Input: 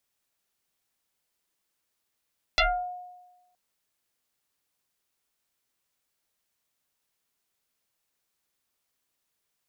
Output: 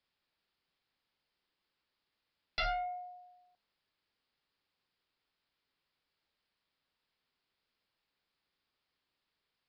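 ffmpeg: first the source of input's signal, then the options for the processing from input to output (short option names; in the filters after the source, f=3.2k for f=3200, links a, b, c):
-f lavfi -i "aevalsrc='0.141*pow(10,-3*t/1.14)*sin(2*PI*721*t+6.8*pow(10,-3*t/0.36)*sin(2*PI*0.95*721*t))':d=0.97:s=44100"
-af "aresample=11025,asoftclip=type=tanh:threshold=-30.5dB,aresample=44100,equalizer=f=660:t=o:w=0.37:g=-3,bandreject=f=116.4:t=h:w=4,bandreject=f=232.8:t=h:w=4,bandreject=f=349.2:t=h:w=4,bandreject=f=465.6:t=h:w=4,bandreject=f=582:t=h:w=4,bandreject=f=698.4:t=h:w=4,bandreject=f=814.8:t=h:w=4,bandreject=f=931.2:t=h:w=4,bandreject=f=1.0476k:t=h:w=4,bandreject=f=1.164k:t=h:w=4,bandreject=f=1.2804k:t=h:w=4,bandreject=f=1.3968k:t=h:w=4,bandreject=f=1.5132k:t=h:w=4,bandreject=f=1.6296k:t=h:w=4,bandreject=f=1.746k:t=h:w=4,bandreject=f=1.8624k:t=h:w=4,bandreject=f=1.9788k:t=h:w=4,bandreject=f=2.0952k:t=h:w=4,bandreject=f=2.2116k:t=h:w=4,bandreject=f=2.328k:t=h:w=4,bandreject=f=2.4444k:t=h:w=4,bandreject=f=2.5608k:t=h:w=4,bandreject=f=2.6772k:t=h:w=4,bandreject=f=2.7936k:t=h:w=4"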